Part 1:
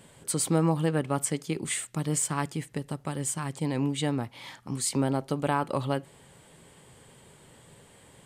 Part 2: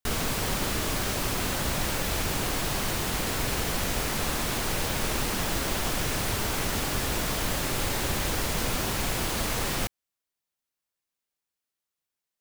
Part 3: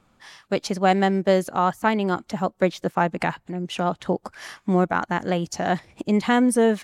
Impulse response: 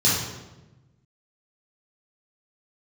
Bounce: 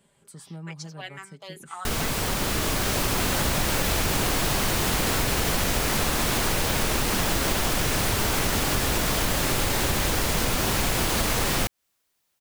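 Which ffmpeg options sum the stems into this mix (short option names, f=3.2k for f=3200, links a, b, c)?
-filter_complex "[0:a]aecho=1:1:5:0.49,acrossover=split=190[a][b];[b]acompressor=threshold=-42dB:ratio=2[c];[a][c]amix=inputs=2:normalize=0,volume=-11.5dB[d];[1:a]dynaudnorm=f=530:g=5:m=11.5dB,adelay=1800,volume=2.5dB[e];[2:a]highpass=1.1k,aecho=1:1:6:0.68,asplit=2[f][g];[g]afreqshift=-2.1[h];[f][h]amix=inputs=2:normalize=1,adelay=150,volume=-9dB[i];[d][e][i]amix=inputs=3:normalize=0,acompressor=threshold=-21dB:ratio=6"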